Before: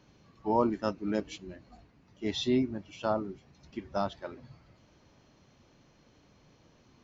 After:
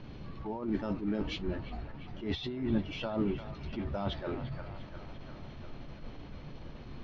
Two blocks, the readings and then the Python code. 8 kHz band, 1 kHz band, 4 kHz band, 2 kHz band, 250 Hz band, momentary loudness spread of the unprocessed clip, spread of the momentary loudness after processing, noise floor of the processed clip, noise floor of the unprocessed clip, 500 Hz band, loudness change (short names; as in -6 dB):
n/a, -8.5 dB, -2.0 dB, +0.5 dB, -1.0 dB, 17 LU, 15 LU, -47 dBFS, -63 dBFS, -5.0 dB, -4.0 dB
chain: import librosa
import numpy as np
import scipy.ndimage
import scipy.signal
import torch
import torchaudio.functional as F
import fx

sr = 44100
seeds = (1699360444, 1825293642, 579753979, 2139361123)

y = fx.law_mismatch(x, sr, coded='mu')
y = fx.high_shelf(y, sr, hz=3200.0, db=9.0)
y = fx.dmg_noise_colour(y, sr, seeds[0], colour='brown', level_db=-58.0)
y = fx.over_compress(y, sr, threshold_db=-33.0, ratio=-1.0)
y = scipy.signal.sosfilt(scipy.signal.butter(4, 4100.0, 'lowpass', fs=sr, output='sos'), y)
y = fx.tilt_eq(y, sr, slope=-2.0)
y = fx.doubler(y, sr, ms=14.0, db=-14)
y = fx.echo_wet_bandpass(y, sr, ms=348, feedback_pct=68, hz=1300.0, wet_db=-9.0)
y = fx.attack_slew(y, sr, db_per_s=120.0)
y = F.gain(torch.from_numpy(y), -2.0).numpy()